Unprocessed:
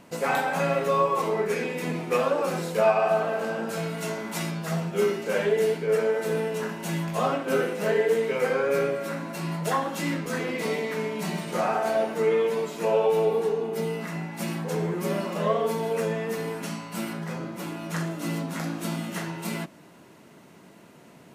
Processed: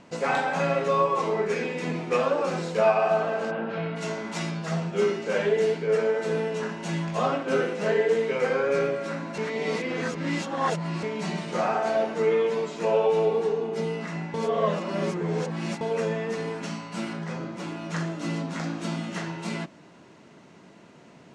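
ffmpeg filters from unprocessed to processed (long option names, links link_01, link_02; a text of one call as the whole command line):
ffmpeg -i in.wav -filter_complex "[0:a]asplit=3[link_01][link_02][link_03];[link_01]afade=type=out:start_time=3.5:duration=0.02[link_04];[link_02]lowpass=frequency=3300:width=0.5412,lowpass=frequency=3300:width=1.3066,afade=type=in:start_time=3.5:duration=0.02,afade=type=out:start_time=3.95:duration=0.02[link_05];[link_03]afade=type=in:start_time=3.95:duration=0.02[link_06];[link_04][link_05][link_06]amix=inputs=3:normalize=0,asplit=5[link_07][link_08][link_09][link_10][link_11];[link_07]atrim=end=9.382[link_12];[link_08]atrim=start=9.378:end=11.032,asetpts=PTS-STARTPTS,areverse[link_13];[link_09]atrim=start=11.028:end=14.342[link_14];[link_10]atrim=start=14.338:end=15.812,asetpts=PTS-STARTPTS,areverse[link_15];[link_11]atrim=start=15.808[link_16];[link_12][link_13]acrossfade=duration=0.004:curve1=hsin:curve2=hsin[link_17];[link_17][link_14]acrossfade=duration=0.004:curve1=hsin:curve2=hsin[link_18];[link_18][link_15]acrossfade=duration=0.004:curve1=hsin:curve2=hsin[link_19];[link_19][link_16]acrossfade=duration=0.004:curve1=hsin:curve2=hsin,lowpass=frequency=7200:width=0.5412,lowpass=frequency=7200:width=1.3066" out.wav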